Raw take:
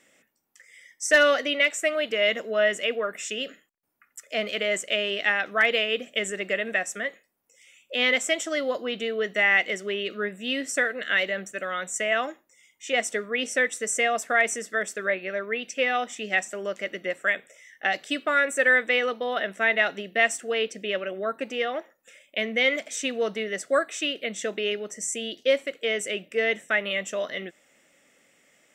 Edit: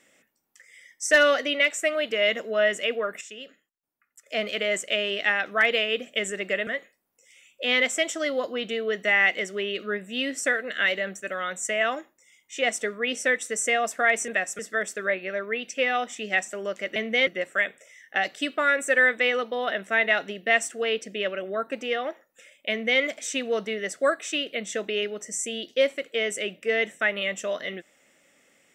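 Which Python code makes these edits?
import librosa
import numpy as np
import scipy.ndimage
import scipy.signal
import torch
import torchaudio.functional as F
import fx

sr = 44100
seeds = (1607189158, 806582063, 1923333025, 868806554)

y = fx.edit(x, sr, fx.clip_gain(start_s=3.21, length_s=1.05, db=-10.0),
    fx.move(start_s=6.67, length_s=0.31, to_s=14.59),
    fx.duplicate(start_s=22.39, length_s=0.31, to_s=16.96), tone=tone)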